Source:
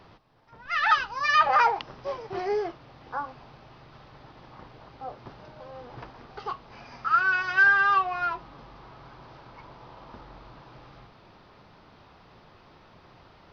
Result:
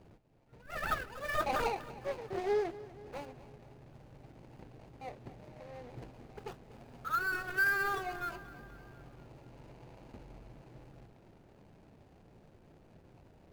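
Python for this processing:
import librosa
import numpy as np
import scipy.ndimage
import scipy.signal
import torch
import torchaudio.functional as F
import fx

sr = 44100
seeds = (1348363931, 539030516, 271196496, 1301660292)

y = scipy.signal.medfilt(x, 41)
y = fx.echo_feedback(y, sr, ms=241, feedback_pct=59, wet_db=-18.0)
y = y * 10.0 ** (-2.5 / 20.0)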